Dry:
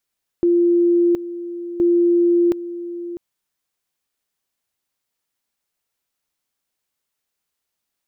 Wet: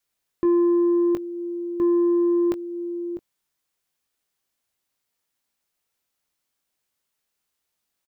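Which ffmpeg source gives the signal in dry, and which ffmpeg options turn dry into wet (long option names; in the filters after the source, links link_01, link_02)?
-f lavfi -i "aevalsrc='pow(10,(-12-14*gte(mod(t,1.37),0.72))/20)*sin(2*PI*346*t)':duration=2.74:sample_rate=44100"
-filter_complex "[0:a]adynamicequalizer=threshold=0.0316:dfrequency=360:dqfactor=2.4:tfrequency=360:tqfactor=2.4:attack=5:release=100:ratio=0.375:range=3:mode=cutabove:tftype=bell,asoftclip=type=tanh:threshold=-17.5dB,asplit=2[link_01][link_02];[link_02]adelay=20,volume=-10dB[link_03];[link_01][link_03]amix=inputs=2:normalize=0"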